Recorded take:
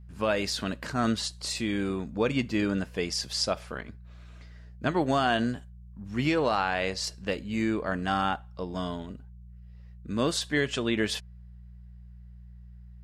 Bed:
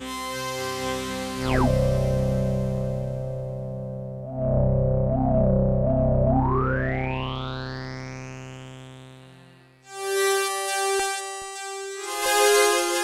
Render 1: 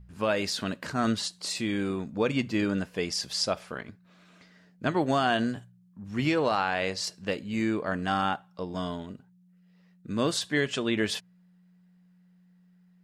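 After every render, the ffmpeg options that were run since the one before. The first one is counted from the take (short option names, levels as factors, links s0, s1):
-af "bandreject=f=60:t=h:w=4,bandreject=f=120:t=h:w=4"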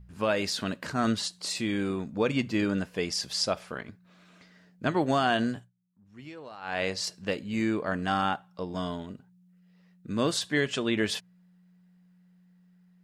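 -filter_complex "[0:a]asplit=3[s0][s1][s2];[s0]atrim=end=5.72,asetpts=PTS-STARTPTS,afade=t=out:st=5.53:d=0.19:silence=0.11885[s3];[s1]atrim=start=5.72:end=6.61,asetpts=PTS-STARTPTS,volume=0.119[s4];[s2]atrim=start=6.61,asetpts=PTS-STARTPTS,afade=t=in:d=0.19:silence=0.11885[s5];[s3][s4][s5]concat=n=3:v=0:a=1"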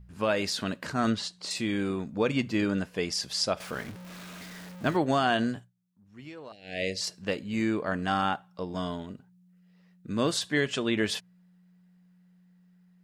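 -filter_complex "[0:a]asettb=1/sr,asplit=3[s0][s1][s2];[s0]atrim=end=1.104[s3];[s1]atrim=start=1.1:end=1.51,asetpts=PTS-STARTPTS,afade=t=in:d=0.004:c=qsin,afade=t=out:st=0.406:d=0.004:c=qsin,adynamicsmooth=sensitivity=0.5:basefreq=7100[s4];[s2]atrim=start=1.506[s5];[s3][s4]acrossfade=d=0.004:c1=hsin:c2=qsin[s6];[s6][s5]acrossfade=d=0.004:c1=qsin:c2=hsin,asettb=1/sr,asplit=3[s7][s8][s9];[s7]atrim=end=3.604[s10];[s8]atrim=start=3.6:end=4.97,asetpts=PTS-STARTPTS,afade=t=in:d=0.004:c=qsin,afade=t=out:st=1.366:d=0.004:c=qsin,aeval=exprs='val(0)+0.5*0.0106*sgn(val(0))':c=same[s11];[s9]atrim=start=4.966[s12];[s10][s11]acrossfade=d=0.004:c1=hsin:c2=qsin[s13];[s13][s12]acrossfade=d=0.004:c1=qsin:c2=hsin,asettb=1/sr,asplit=3[s14][s15][s16];[s14]atrim=end=6.524[s17];[s15]atrim=start=6.52:end=7.01,asetpts=PTS-STARTPTS,afade=t=in:d=0.004:c=qsin,afade=t=out:st=0.486:d=0.004:c=qsin,asuperstop=centerf=1100:order=8:qfactor=0.88[s18];[s16]atrim=start=7.006[s19];[s17][s18]acrossfade=d=0.004:c1=hsin:c2=qsin[s20];[s20][s19]acrossfade=d=0.004:c1=qsin:c2=hsin"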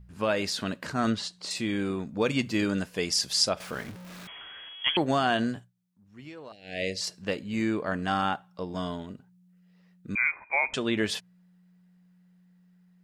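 -filter_complex "[0:a]asettb=1/sr,asplit=3[s0][s1][s2];[s0]atrim=end=2.214[s3];[s1]atrim=start=2.21:end=3.49,asetpts=PTS-STARTPTS,afade=t=in:d=0.004:c=qsin,afade=t=out:st=1.276:d=0.004:c=qsin,highshelf=f=4100:g=8[s4];[s2]atrim=start=3.486[s5];[s3][s4]acrossfade=d=0.004:c1=hsin:c2=qsin[s6];[s6][s5]acrossfade=d=0.004:c1=qsin:c2=hsin,asettb=1/sr,asplit=3[s7][s8][s9];[s7]atrim=end=4.274[s10];[s8]atrim=start=4.27:end=4.97,asetpts=PTS-STARTPTS,afade=t=in:d=0.004:c=qsin,afade=t=out:st=0.696:d=0.004:c=qsin,lowpass=f=3000:t=q:w=0.5098,lowpass=f=3000:t=q:w=0.6013,lowpass=f=3000:t=q:w=0.9,lowpass=f=3000:t=q:w=2.563,afreqshift=-3500[s11];[s9]atrim=start=4.966[s12];[s10][s11]acrossfade=d=0.004:c1=hsin:c2=qsin[s13];[s13][s12]acrossfade=d=0.004:c1=qsin:c2=hsin,asettb=1/sr,asplit=3[s14][s15][s16];[s14]atrim=end=10.154[s17];[s15]atrim=start=10.15:end=10.74,asetpts=PTS-STARTPTS,afade=t=in:d=0.004:c=qsin,afade=t=out:st=0.586:d=0.004:c=qsin,lowpass=f=2200:t=q:w=0.5098,lowpass=f=2200:t=q:w=0.6013,lowpass=f=2200:t=q:w=0.9,lowpass=f=2200:t=q:w=2.563,afreqshift=-2600[s18];[s16]atrim=start=10.736[s19];[s17][s18]acrossfade=d=0.004:c1=hsin:c2=qsin[s20];[s20][s19]acrossfade=d=0.004:c1=qsin:c2=hsin"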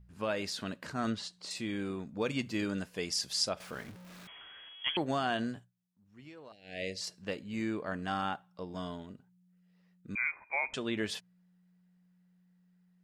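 -af "volume=0.447"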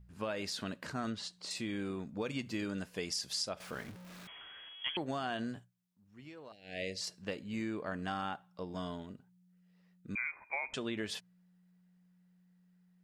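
-af "acompressor=threshold=0.02:ratio=4"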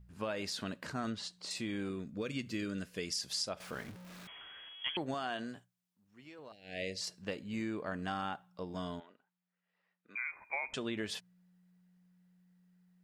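-filter_complex "[0:a]asettb=1/sr,asplit=3[s0][s1][s2];[s0]atrim=end=1.894[s3];[s1]atrim=start=1.89:end=3.21,asetpts=PTS-STARTPTS,afade=t=in:d=0.004:c=qsin,afade=t=out:st=1.316:d=0.004:c=qsin,equalizer=f=840:w=3.2:g=-15[s4];[s2]atrim=start=3.206[s5];[s3][s4]acrossfade=d=0.004:c1=hsin:c2=qsin[s6];[s6][s5]acrossfade=d=0.004:c1=qsin:c2=hsin,asettb=1/sr,asplit=3[s7][s8][s9];[s7]atrim=end=5.144[s10];[s8]atrim=start=5.14:end=6.39,asetpts=PTS-STARTPTS,afade=t=in:d=0.004:c=qsin,afade=t=out:st=1.246:d=0.004:c=qsin,lowshelf=f=170:g=-12[s11];[s9]atrim=start=6.386[s12];[s10][s11]acrossfade=d=0.004:c1=hsin:c2=qsin[s13];[s13][s12]acrossfade=d=0.004:c1=qsin:c2=hsin,asplit=3[s14][s15][s16];[s14]afade=t=out:st=8.99:d=0.02[s17];[s15]highpass=700,lowpass=2700,afade=t=in:st=8.99:d=0.02,afade=t=out:st=10.3:d=0.02[s18];[s16]afade=t=in:st=10.3:d=0.02[s19];[s17][s18][s19]amix=inputs=3:normalize=0"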